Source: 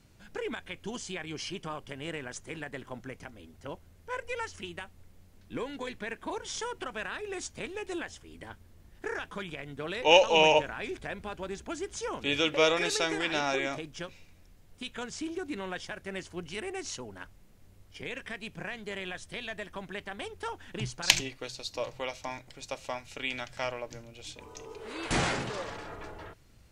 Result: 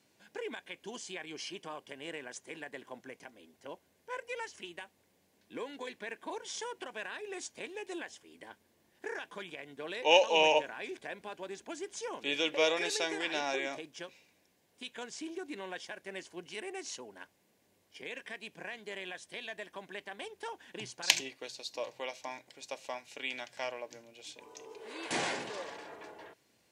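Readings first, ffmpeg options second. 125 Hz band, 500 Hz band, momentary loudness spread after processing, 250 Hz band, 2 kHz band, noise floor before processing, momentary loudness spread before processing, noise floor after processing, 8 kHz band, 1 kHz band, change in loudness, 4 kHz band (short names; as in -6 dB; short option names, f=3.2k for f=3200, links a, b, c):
-15.5 dB, -4.0 dB, 20 LU, -6.5 dB, -4.0 dB, -57 dBFS, 19 LU, -72 dBFS, -3.5 dB, -4.0 dB, -4.0 dB, -3.5 dB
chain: -af "highpass=290,bandreject=f=1.3k:w=5.3,volume=-3.5dB"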